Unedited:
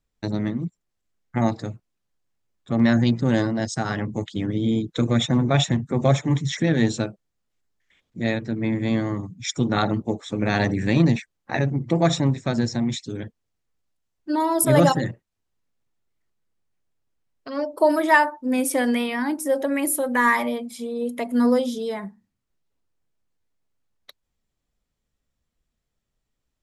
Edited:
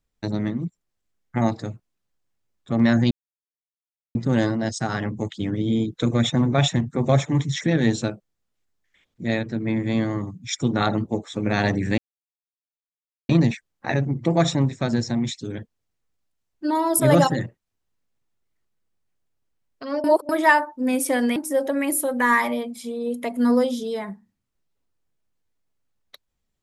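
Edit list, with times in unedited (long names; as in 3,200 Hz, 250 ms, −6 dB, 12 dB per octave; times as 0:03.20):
0:03.11: splice in silence 1.04 s
0:10.94: splice in silence 1.31 s
0:17.69–0:17.94: reverse
0:19.01–0:19.31: remove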